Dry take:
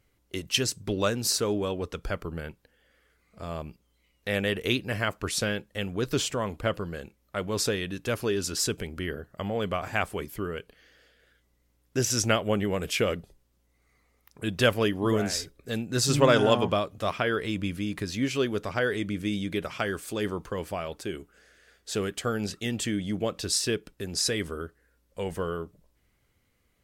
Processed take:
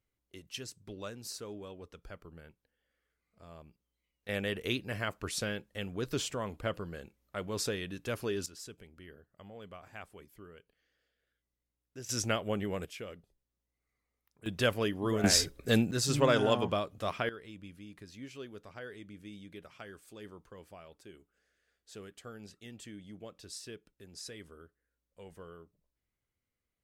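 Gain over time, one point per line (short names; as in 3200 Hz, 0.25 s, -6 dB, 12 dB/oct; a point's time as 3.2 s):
-16.5 dB
from 4.29 s -7 dB
from 8.46 s -19.5 dB
from 12.09 s -7.5 dB
from 12.85 s -18 dB
from 14.46 s -6.5 dB
from 15.24 s +5 dB
from 15.91 s -6 dB
from 17.29 s -18.5 dB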